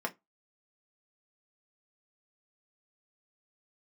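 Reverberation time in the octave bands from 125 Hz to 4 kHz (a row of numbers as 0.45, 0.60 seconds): 0.20, 0.20, 0.20, 0.15, 0.15, 0.15 seconds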